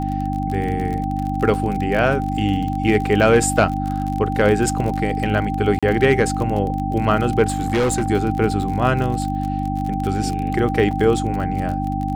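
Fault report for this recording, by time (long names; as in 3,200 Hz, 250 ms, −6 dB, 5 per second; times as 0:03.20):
surface crackle 39 per second −24 dBFS
mains hum 50 Hz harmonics 6 −24 dBFS
whistle 780 Hz −25 dBFS
0:05.79–0:05.83: drop-out 36 ms
0:07.48–0:08.08: clipping −15 dBFS
0:10.91: drop-out 3.9 ms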